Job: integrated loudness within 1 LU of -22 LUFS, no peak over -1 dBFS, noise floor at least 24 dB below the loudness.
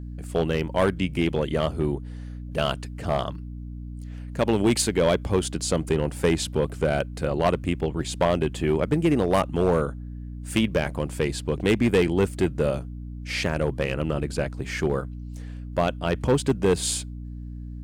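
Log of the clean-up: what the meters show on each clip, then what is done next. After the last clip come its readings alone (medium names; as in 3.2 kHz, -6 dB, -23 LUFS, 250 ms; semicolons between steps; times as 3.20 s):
clipped samples 1.1%; clipping level -14.0 dBFS; hum 60 Hz; highest harmonic 300 Hz; hum level -33 dBFS; loudness -25.0 LUFS; peak level -14.0 dBFS; loudness target -22.0 LUFS
-> clip repair -14 dBFS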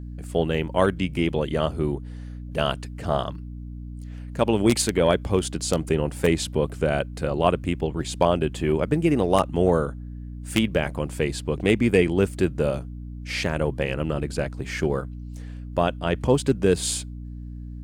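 clipped samples 0.0%; hum 60 Hz; highest harmonic 300 Hz; hum level -33 dBFS
-> de-hum 60 Hz, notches 5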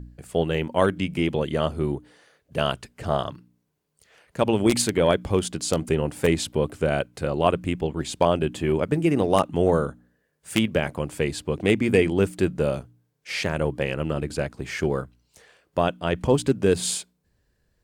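hum not found; loudness -24.5 LUFS; peak level -4.5 dBFS; loudness target -22.0 LUFS
-> trim +2.5 dB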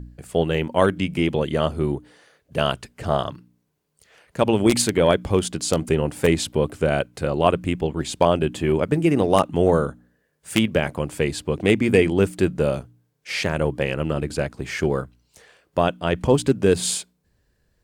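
loudness -22.0 LUFS; peak level -2.0 dBFS; noise floor -69 dBFS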